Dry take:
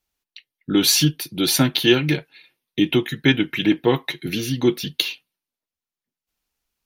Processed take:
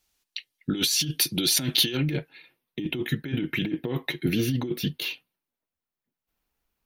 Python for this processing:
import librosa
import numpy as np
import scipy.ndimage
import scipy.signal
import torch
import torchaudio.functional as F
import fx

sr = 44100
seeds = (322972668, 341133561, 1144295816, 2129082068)

y = fx.dynamic_eq(x, sr, hz=1000.0, q=0.99, threshold_db=-36.0, ratio=4.0, max_db=-7)
y = fx.over_compress(y, sr, threshold_db=-25.0, ratio=-1.0)
y = fx.peak_eq(y, sr, hz=6400.0, db=fx.steps((0.0, 5.5), (1.97, -9.5)), octaves=2.5)
y = F.gain(torch.from_numpy(y), -1.5).numpy()